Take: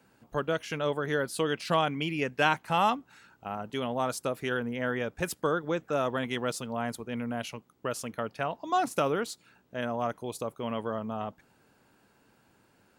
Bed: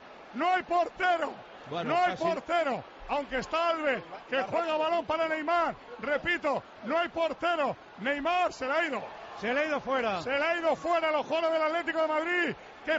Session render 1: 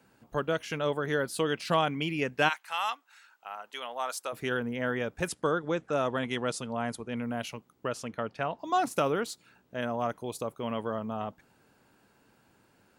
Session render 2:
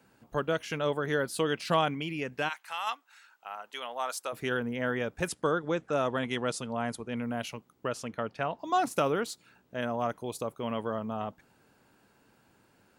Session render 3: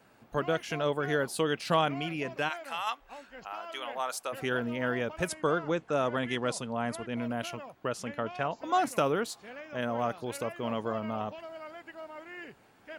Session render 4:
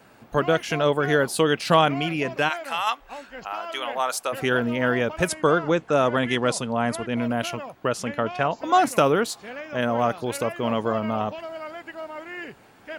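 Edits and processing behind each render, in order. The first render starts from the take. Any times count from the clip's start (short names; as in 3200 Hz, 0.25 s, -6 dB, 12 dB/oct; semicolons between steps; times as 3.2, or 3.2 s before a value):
2.48–4.32 HPF 1500 Hz -> 700 Hz; 5.28–7.24 steep low-pass 11000 Hz 72 dB/oct; 7.88–8.59 air absorption 51 m
1.94–2.87 compressor 1.5:1, threshold -36 dBFS
add bed -16.5 dB
gain +8.5 dB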